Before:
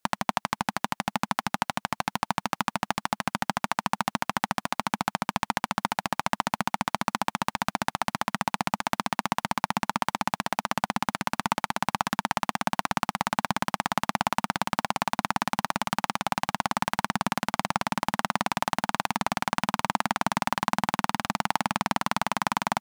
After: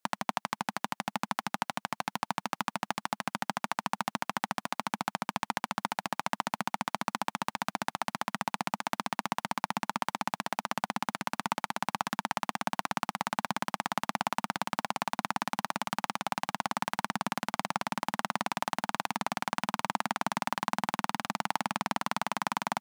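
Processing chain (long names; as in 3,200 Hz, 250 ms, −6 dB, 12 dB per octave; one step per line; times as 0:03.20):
high-pass filter 150 Hz 12 dB per octave
level −5 dB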